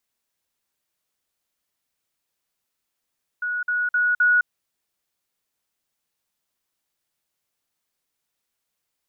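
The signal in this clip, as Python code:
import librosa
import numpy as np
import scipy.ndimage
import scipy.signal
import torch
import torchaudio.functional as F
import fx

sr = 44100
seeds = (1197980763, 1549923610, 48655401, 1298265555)

y = fx.level_ladder(sr, hz=1460.0, from_db=-23.0, step_db=3.0, steps=4, dwell_s=0.21, gap_s=0.05)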